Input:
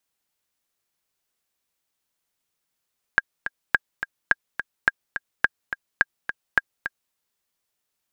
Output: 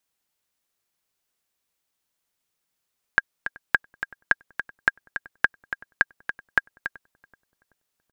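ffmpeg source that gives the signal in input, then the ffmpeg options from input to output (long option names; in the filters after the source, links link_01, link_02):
-f lavfi -i "aevalsrc='pow(10,(-3-10.5*gte(mod(t,2*60/212),60/212))/20)*sin(2*PI*1620*mod(t,60/212))*exp(-6.91*mod(t,60/212)/0.03)':duration=3.96:sample_rate=44100"
-filter_complex "[0:a]asplit=2[link_01][link_02];[link_02]adelay=380,lowpass=frequency=890:poles=1,volume=-20.5dB,asplit=2[link_03][link_04];[link_04]adelay=380,lowpass=frequency=890:poles=1,volume=0.53,asplit=2[link_05][link_06];[link_06]adelay=380,lowpass=frequency=890:poles=1,volume=0.53,asplit=2[link_07][link_08];[link_08]adelay=380,lowpass=frequency=890:poles=1,volume=0.53[link_09];[link_01][link_03][link_05][link_07][link_09]amix=inputs=5:normalize=0"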